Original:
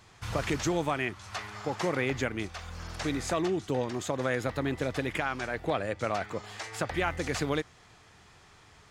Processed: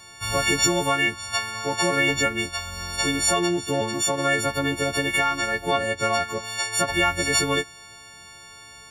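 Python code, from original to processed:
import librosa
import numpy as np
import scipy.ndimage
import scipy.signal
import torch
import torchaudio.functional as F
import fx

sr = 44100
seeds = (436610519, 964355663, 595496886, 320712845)

y = fx.freq_snap(x, sr, grid_st=4)
y = fx.dmg_crackle(y, sr, seeds[0], per_s=fx.line((5.17, 21.0), (5.94, 52.0)), level_db=-55.0, at=(5.17, 5.94), fade=0.02)
y = y * librosa.db_to_amplitude(5.0)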